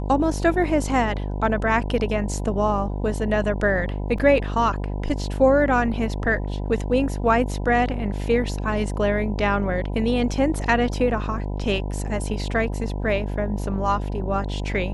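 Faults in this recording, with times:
mains buzz 50 Hz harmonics 20 −27 dBFS
0:04.18: drop-out 3.7 ms

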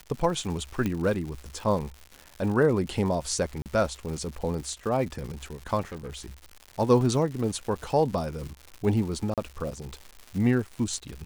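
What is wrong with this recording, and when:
surface crackle 240 per second −35 dBFS
0:00.86: click −15 dBFS
0:03.62–0:03.66: drop-out 38 ms
0:05.81–0:06.39: clipping −33 dBFS
0:07.01: drop-out 2 ms
0:09.34–0:09.38: drop-out 37 ms

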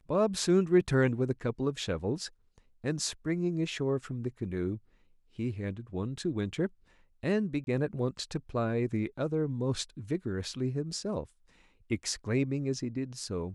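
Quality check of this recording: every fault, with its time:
0:07.64–0:07.67: drop-out 31 ms

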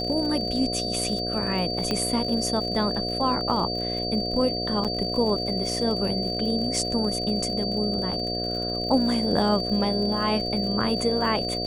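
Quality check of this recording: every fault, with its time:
mains buzz 60 Hz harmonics 12 −31 dBFS
surface crackle 52 per second −32 dBFS
whistle 4,600 Hz −29 dBFS
0:01.91: click −12 dBFS
0:04.84–0:04.85: drop-out 6.9 ms

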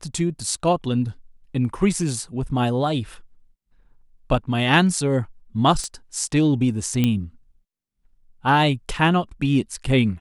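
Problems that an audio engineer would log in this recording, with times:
0:05.84: click −17 dBFS
0:07.04: click −8 dBFS

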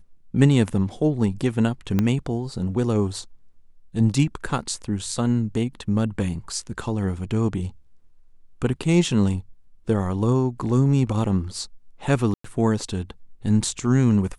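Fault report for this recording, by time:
0:01.99: click −9 dBFS
0:12.34–0:12.44: drop-out 104 ms

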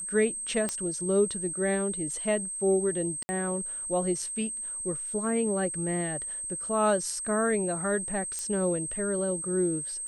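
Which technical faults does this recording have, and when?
whistle 8,300 Hz −33 dBFS
0:00.69: click −16 dBFS
0:03.23–0:03.29: drop-out 60 ms
0:08.39: click −21 dBFS

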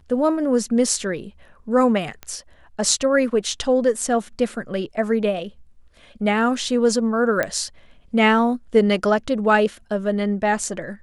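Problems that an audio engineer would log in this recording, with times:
0:02.23: click −18 dBFS
0:07.43: click −9 dBFS

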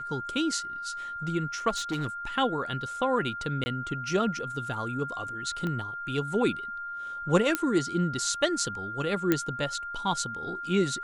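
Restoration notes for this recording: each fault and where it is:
whistle 1,400 Hz −34 dBFS
0:01.69–0:02.08: clipping −25.5 dBFS
0:03.64–0:03.66: drop-out 20 ms
0:05.67: click −21 dBFS
0:07.55: click −10 dBFS
0:09.32: click −10 dBFS

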